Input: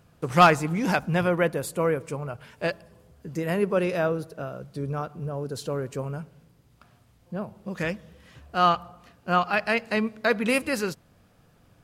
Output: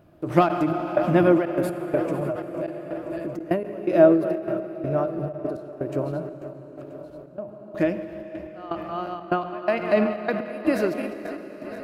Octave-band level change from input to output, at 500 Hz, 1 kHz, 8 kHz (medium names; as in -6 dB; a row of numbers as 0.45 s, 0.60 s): +4.5 dB, -3.5 dB, under -10 dB